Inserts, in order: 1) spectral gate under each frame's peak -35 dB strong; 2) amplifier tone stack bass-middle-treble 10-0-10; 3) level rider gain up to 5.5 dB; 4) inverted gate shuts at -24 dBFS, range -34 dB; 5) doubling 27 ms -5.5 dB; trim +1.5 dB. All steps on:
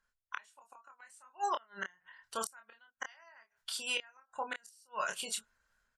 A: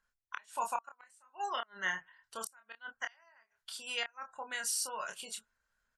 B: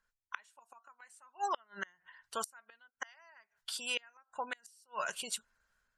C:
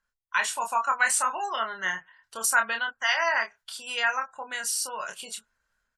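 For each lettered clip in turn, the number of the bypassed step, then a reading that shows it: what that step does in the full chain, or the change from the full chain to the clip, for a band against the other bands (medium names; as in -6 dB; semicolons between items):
3, crest factor change -2.0 dB; 5, loudness change -1.0 LU; 4, momentary loudness spread change -9 LU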